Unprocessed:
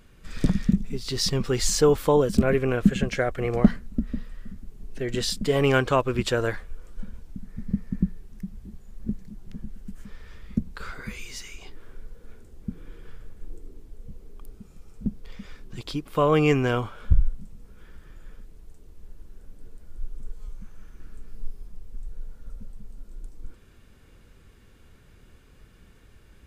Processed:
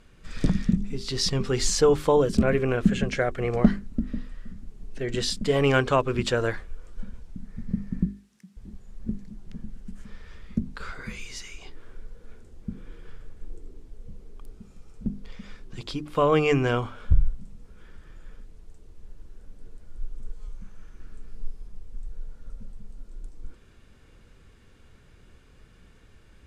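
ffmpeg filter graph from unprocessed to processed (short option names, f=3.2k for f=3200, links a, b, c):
-filter_complex "[0:a]asettb=1/sr,asplit=3[a][b][c];[a]atrim=end=8.054[d];[b]atrim=start=8.05:end=8.57,asetpts=PTS-STARTPTS,afade=t=in:d=0.004:c=qsin,afade=t=out:st=0.516:d=0.004:c=qsin,highpass=f=190:w=0.5412,highpass=f=190:w=1.3066,equalizer=f=410:w=0.38:g=-14[e];[c]atrim=start=8.566[f];[d][e]acrossfade=d=0.004:c1=hsin:c2=qsin[g];[g][f]acrossfade=d=0.004:c1=qsin:c2=hsin,lowpass=9.1k,bandreject=f=50:t=h:w=6,bandreject=f=100:t=h:w=6,bandreject=f=150:t=h:w=6,bandreject=f=200:t=h:w=6,bandreject=f=250:t=h:w=6,bandreject=f=300:t=h:w=6,bandreject=f=350:t=h:w=6,bandreject=f=400:t=h:w=6"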